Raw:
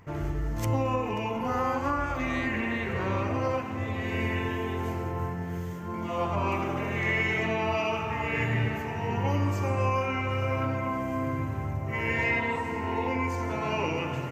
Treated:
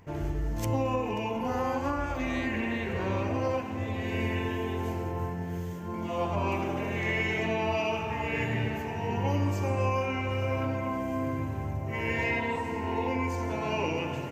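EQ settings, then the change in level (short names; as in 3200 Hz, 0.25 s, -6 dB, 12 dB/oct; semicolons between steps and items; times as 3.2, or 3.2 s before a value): thirty-one-band EQ 125 Hz -6 dB, 1250 Hz -9 dB, 2000 Hz -4 dB; 0.0 dB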